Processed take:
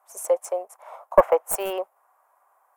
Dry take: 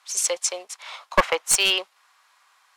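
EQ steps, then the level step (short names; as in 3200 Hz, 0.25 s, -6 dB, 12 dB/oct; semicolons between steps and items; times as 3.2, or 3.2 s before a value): EQ curve 250 Hz 0 dB, 650 Hz +14 dB, 4100 Hz -28 dB, 15000 Hz +9 dB; dynamic EQ 2700 Hz, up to +4 dB, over -39 dBFS, Q 0.97; -4.0 dB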